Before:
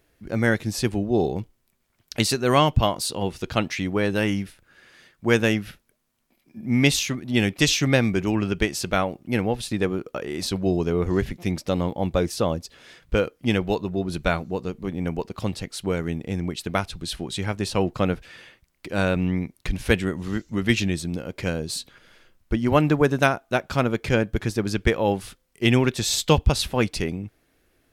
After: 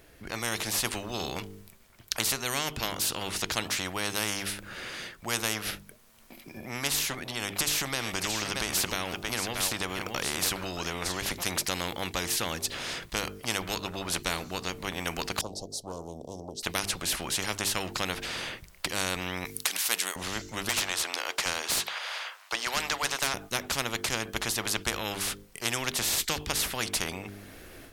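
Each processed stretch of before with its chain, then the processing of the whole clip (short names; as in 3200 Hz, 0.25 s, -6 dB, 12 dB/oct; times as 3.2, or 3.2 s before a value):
7.3–11.27 echo 0.625 s -16.5 dB + compressor 5:1, threshold -24 dBFS
15.41–16.63 elliptic band-stop 610–5700 Hz, stop band 70 dB + three-band isolator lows -22 dB, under 580 Hz, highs -21 dB, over 3600 Hz + Doppler distortion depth 0.16 ms
19.45–20.16 HPF 1100 Hz + tilt +3 dB/oct
20.69–23.34 HPF 800 Hz 24 dB/oct + overdrive pedal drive 18 dB, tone 1800 Hz, clips at -5 dBFS
whole clip: notches 50/100/150/200/250/300/350/400/450 Hz; AGC gain up to 9.5 dB; spectral compressor 4:1; gain -6 dB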